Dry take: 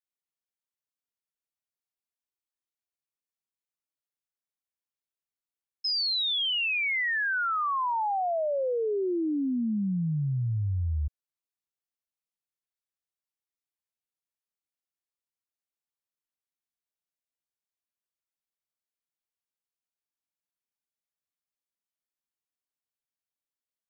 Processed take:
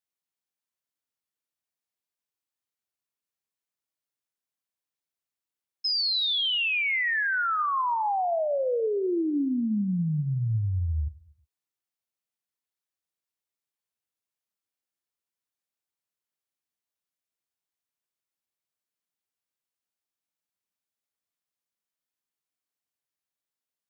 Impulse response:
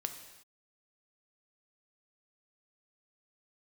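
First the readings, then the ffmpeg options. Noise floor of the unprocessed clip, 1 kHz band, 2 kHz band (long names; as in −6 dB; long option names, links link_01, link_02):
below −85 dBFS, +1.5 dB, +1.5 dB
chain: -filter_complex "[0:a]highpass=frequency=67:width=0.5412,highpass=frequency=67:width=1.3066,asplit=2[link_01][link_02];[1:a]atrim=start_sample=2205[link_03];[link_02][link_03]afir=irnorm=-1:irlink=0,volume=-3.5dB[link_04];[link_01][link_04]amix=inputs=2:normalize=0,volume=-2.5dB"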